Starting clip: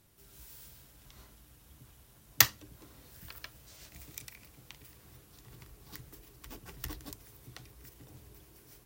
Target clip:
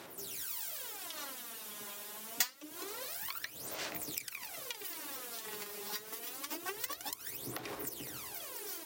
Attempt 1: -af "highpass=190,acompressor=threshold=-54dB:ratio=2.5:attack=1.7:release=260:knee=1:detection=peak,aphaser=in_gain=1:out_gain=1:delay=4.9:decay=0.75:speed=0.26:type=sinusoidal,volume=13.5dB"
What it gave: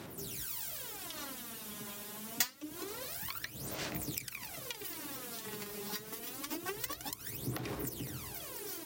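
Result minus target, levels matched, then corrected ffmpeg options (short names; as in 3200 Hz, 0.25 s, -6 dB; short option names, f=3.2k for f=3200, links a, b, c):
250 Hz band +6.5 dB
-af "highpass=430,acompressor=threshold=-54dB:ratio=2.5:attack=1.7:release=260:knee=1:detection=peak,aphaser=in_gain=1:out_gain=1:delay=4.9:decay=0.75:speed=0.26:type=sinusoidal,volume=13.5dB"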